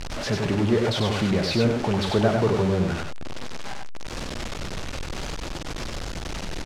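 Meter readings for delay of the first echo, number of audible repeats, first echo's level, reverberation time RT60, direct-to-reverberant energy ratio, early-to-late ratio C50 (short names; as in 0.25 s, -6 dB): 96 ms, 1, -4.0 dB, none, none, none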